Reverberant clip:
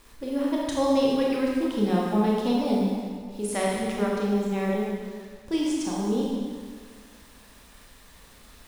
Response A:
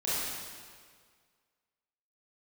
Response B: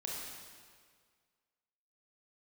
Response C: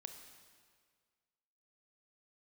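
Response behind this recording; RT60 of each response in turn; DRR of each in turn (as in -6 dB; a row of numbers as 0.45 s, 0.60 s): B; 1.8 s, 1.8 s, 1.8 s; -10.5 dB, -4.0 dB, 5.5 dB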